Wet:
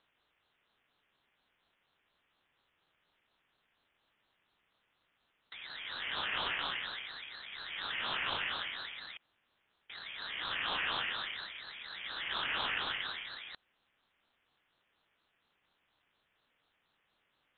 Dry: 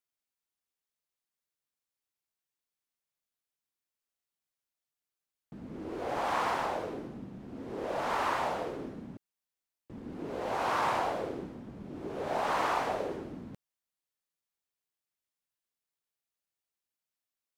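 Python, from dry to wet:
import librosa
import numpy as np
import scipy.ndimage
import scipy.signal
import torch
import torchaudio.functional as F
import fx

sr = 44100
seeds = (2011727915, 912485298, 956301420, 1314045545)

y = fx.bin_compress(x, sr, power=0.6)
y = fx.freq_invert(y, sr, carrier_hz=3100)
y = fx.ring_lfo(y, sr, carrier_hz=790.0, swing_pct=55, hz=4.2)
y = y * 10.0 ** (-5.0 / 20.0)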